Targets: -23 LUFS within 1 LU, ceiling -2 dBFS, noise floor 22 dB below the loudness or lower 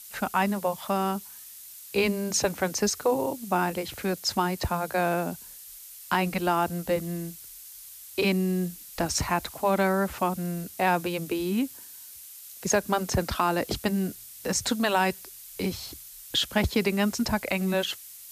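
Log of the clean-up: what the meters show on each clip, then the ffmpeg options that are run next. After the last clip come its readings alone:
noise floor -46 dBFS; noise floor target -50 dBFS; loudness -27.5 LUFS; peak level -10.5 dBFS; loudness target -23.0 LUFS
-> -af "afftdn=nr=6:nf=-46"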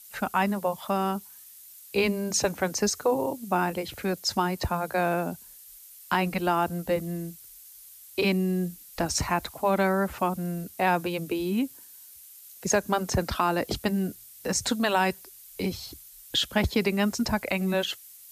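noise floor -49 dBFS; noise floor target -50 dBFS
-> -af "afftdn=nr=6:nf=-49"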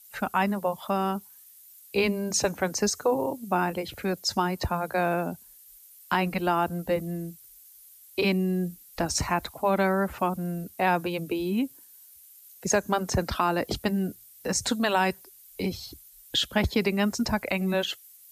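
noise floor -53 dBFS; loudness -27.5 LUFS; peak level -11.0 dBFS; loudness target -23.0 LUFS
-> -af "volume=1.68"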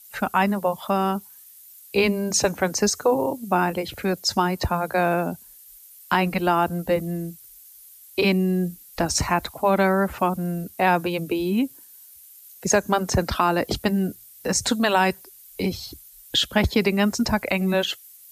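loudness -23.0 LUFS; peak level -6.5 dBFS; noise floor -48 dBFS

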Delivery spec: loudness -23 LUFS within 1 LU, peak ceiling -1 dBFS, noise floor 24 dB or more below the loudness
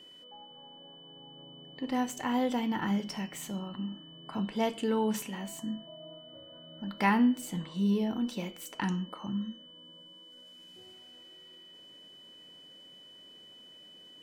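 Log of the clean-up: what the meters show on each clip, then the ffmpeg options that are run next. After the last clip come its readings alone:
steady tone 3 kHz; tone level -51 dBFS; loudness -32.5 LUFS; peak level -13.5 dBFS; loudness target -23.0 LUFS
-> -af "bandreject=f=3000:w=30"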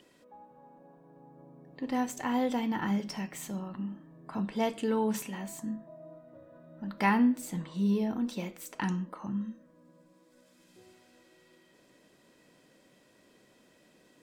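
steady tone not found; loudness -32.5 LUFS; peak level -13.5 dBFS; loudness target -23.0 LUFS
-> -af "volume=2.99"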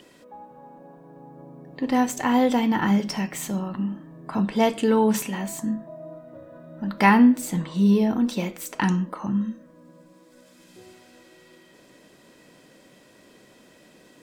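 loudness -23.0 LUFS; peak level -4.0 dBFS; noise floor -54 dBFS

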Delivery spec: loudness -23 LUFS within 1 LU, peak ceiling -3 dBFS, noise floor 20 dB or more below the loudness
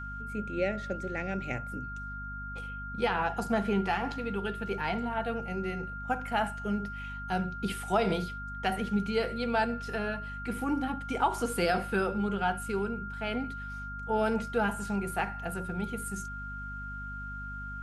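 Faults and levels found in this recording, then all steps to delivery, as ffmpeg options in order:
hum 50 Hz; highest harmonic 250 Hz; hum level -40 dBFS; steady tone 1.4 kHz; tone level -39 dBFS; loudness -32.5 LUFS; peak level -15.5 dBFS; loudness target -23.0 LUFS
-> -af "bandreject=f=50:t=h:w=4,bandreject=f=100:t=h:w=4,bandreject=f=150:t=h:w=4,bandreject=f=200:t=h:w=4,bandreject=f=250:t=h:w=4"
-af "bandreject=f=1400:w=30"
-af "volume=2.99"

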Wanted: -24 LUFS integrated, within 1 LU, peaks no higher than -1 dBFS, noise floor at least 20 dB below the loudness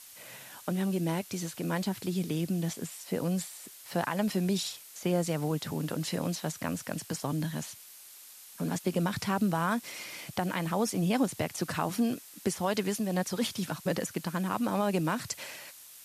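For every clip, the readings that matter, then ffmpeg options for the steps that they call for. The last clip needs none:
noise floor -51 dBFS; noise floor target -52 dBFS; loudness -32.0 LUFS; peak level -16.0 dBFS; loudness target -24.0 LUFS
-> -af "afftdn=nr=6:nf=-51"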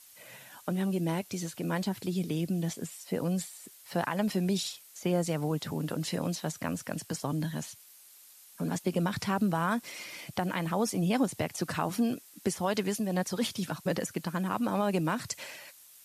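noise floor -55 dBFS; loudness -32.0 LUFS; peak level -16.0 dBFS; loudness target -24.0 LUFS
-> -af "volume=2.51"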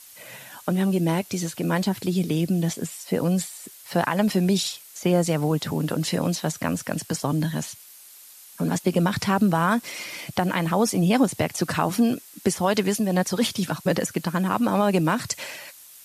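loudness -24.0 LUFS; peak level -8.0 dBFS; noise floor -47 dBFS

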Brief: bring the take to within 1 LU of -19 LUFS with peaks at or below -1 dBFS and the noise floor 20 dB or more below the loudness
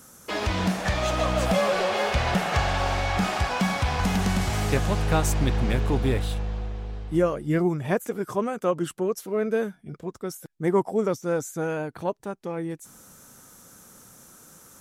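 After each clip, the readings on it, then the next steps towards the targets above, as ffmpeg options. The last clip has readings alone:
loudness -26.0 LUFS; peak level -10.5 dBFS; loudness target -19.0 LUFS
-> -af "volume=2.24"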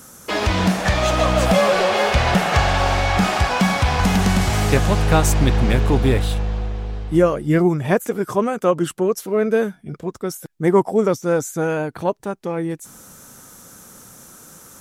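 loudness -19.0 LUFS; peak level -3.5 dBFS; noise floor -46 dBFS

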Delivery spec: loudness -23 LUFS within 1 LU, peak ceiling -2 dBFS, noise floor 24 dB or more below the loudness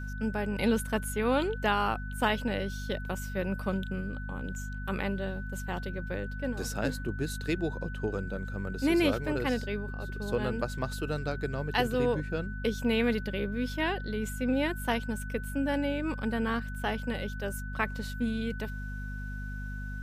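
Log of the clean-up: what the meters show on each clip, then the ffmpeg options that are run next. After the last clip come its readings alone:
hum 50 Hz; highest harmonic 250 Hz; hum level -35 dBFS; steady tone 1.5 kHz; tone level -43 dBFS; loudness -32.0 LUFS; peak level -14.0 dBFS; loudness target -23.0 LUFS
-> -af "bandreject=f=50:t=h:w=6,bandreject=f=100:t=h:w=6,bandreject=f=150:t=h:w=6,bandreject=f=200:t=h:w=6,bandreject=f=250:t=h:w=6"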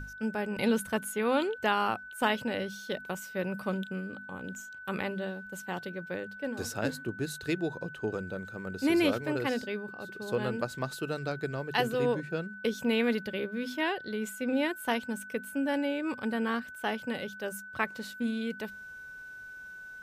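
hum not found; steady tone 1.5 kHz; tone level -43 dBFS
-> -af "bandreject=f=1500:w=30"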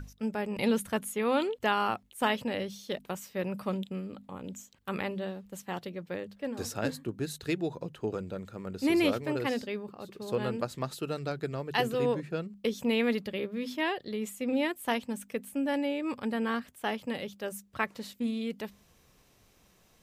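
steady tone not found; loudness -33.0 LUFS; peak level -14.5 dBFS; loudness target -23.0 LUFS
-> -af "volume=3.16"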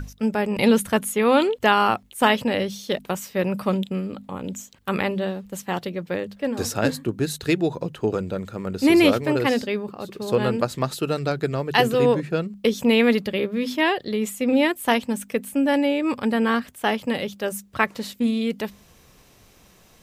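loudness -23.0 LUFS; peak level -4.5 dBFS; noise floor -54 dBFS

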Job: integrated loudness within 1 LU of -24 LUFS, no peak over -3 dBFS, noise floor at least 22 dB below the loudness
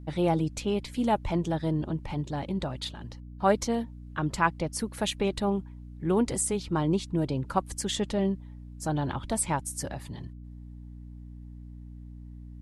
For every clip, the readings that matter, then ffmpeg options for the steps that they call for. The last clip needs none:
hum 60 Hz; highest harmonic 300 Hz; hum level -41 dBFS; loudness -29.5 LUFS; peak level -9.5 dBFS; loudness target -24.0 LUFS
-> -af "bandreject=f=60:t=h:w=6,bandreject=f=120:t=h:w=6,bandreject=f=180:t=h:w=6,bandreject=f=240:t=h:w=6,bandreject=f=300:t=h:w=6"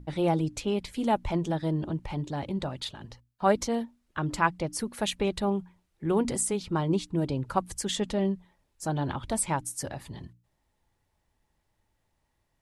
hum not found; loudness -30.0 LUFS; peak level -9.5 dBFS; loudness target -24.0 LUFS
-> -af "volume=2"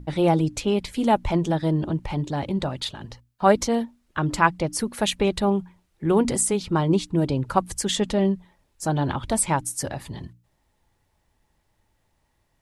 loudness -24.0 LUFS; peak level -3.5 dBFS; noise floor -70 dBFS

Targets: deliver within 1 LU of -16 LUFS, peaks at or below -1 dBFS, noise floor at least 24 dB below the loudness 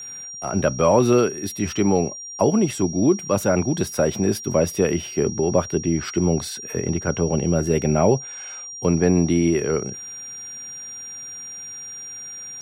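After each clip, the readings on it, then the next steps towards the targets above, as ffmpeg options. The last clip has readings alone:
steady tone 5.7 kHz; tone level -33 dBFS; loudness -21.0 LUFS; peak level -4.5 dBFS; loudness target -16.0 LUFS
-> -af "bandreject=f=5700:w=30"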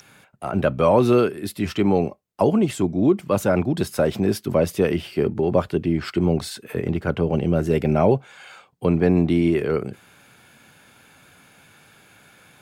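steady tone not found; loudness -21.5 LUFS; peak level -4.5 dBFS; loudness target -16.0 LUFS
-> -af "volume=1.88,alimiter=limit=0.891:level=0:latency=1"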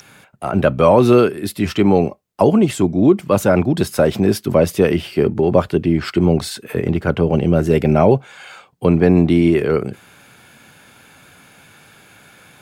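loudness -16.0 LUFS; peak level -1.0 dBFS; noise floor -49 dBFS

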